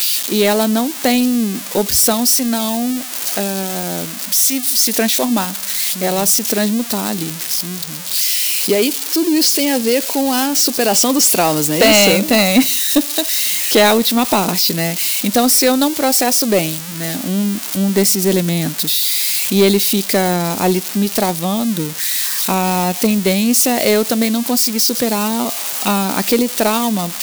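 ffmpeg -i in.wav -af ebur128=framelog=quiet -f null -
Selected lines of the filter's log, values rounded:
Integrated loudness:
  I:         -14.3 LUFS
  Threshold: -24.3 LUFS
Loudness range:
  LRA:         3.7 LU
  Threshold: -34.3 LUFS
  LRA low:   -15.7 LUFS
  LRA high:  -12.0 LUFS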